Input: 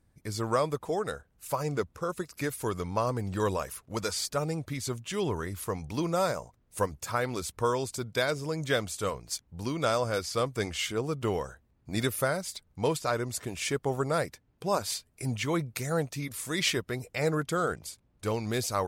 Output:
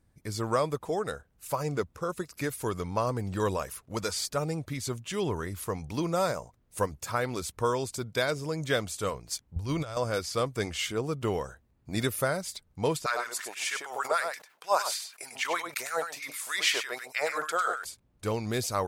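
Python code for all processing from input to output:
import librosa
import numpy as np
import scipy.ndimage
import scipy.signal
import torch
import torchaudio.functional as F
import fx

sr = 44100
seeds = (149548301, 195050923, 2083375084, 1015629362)

y = fx.chain(x, sr, fx.low_shelf_res(hz=130.0, db=12.0, q=1.5),
    fx.over_compress(threshold_db=-31.0, ratio=-0.5), at=(9.56, 9.97))
y = fx.chain(y, sr, fx.echo_single(ms=99, db=-7.0),
    fx.filter_lfo_highpass(shape='sine', hz=6.4, low_hz=640.0, high_hz=1700.0, q=1.8),
    fx.sustainer(db_per_s=140.0), at=(13.06, 17.85))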